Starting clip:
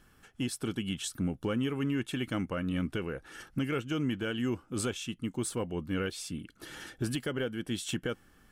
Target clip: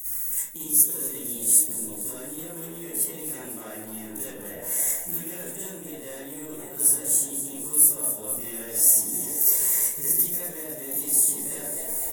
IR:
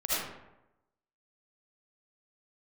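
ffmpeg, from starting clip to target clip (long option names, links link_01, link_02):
-filter_complex "[0:a]acrossover=split=130|1100[link_01][link_02][link_03];[link_01]acompressor=threshold=-53dB:ratio=4[link_04];[link_02]acompressor=threshold=-38dB:ratio=4[link_05];[link_03]acompressor=threshold=-51dB:ratio=4[link_06];[link_04][link_05][link_06]amix=inputs=3:normalize=0,crystalizer=i=1:c=0,atempo=0.58,asplit=8[link_07][link_08][link_09][link_10][link_11][link_12][link_13][link_14];[link_08]adelay=303,afreqshift=66,volume=-10dB[link_15];[link_09]adelay=606,afreqshift=132,volume=-14.4dB[link_16];[link_10]adelay=909,afreqshift=198,volume=-18.9dB[link_17];[link_11]adelay=1212,afreqshift=264,volume=-23.3dB[link_18];[link_12]adelay=1515,afreqshift=330,volume=-27.7dB[link_19];[link_13]adelay=1818,afreqshift=396,volume=-32.2dB[link_20];[link_14]adelay=2121,afreqshift=462,volume=-36.6dB[link_21];[link_07][link_15][link_16][link_17][link_18][link_19][link_20][link_21]amix=inputs=8:normalize=0,asetrate=53361,aresample=44100,asplit=2[link_22][link_23];[link_23]acrusher=bits=4:mix=0:aa=0.5,volume=-8.5dB[link_24];[link_22][link_24]amix=inputs=2:normalize=0[link_25];[1:a]atrim=start_sample=2205,asetrate=66150,aresample=44100[link_26];[link_25][link_26]afir=irnorm=-1:irlink=0,areverse,acompressor=threshold=-42dB:ratio=6,areverse,aexciter=amount=15.4:drive=8.8:freq=6500,volume=5dB"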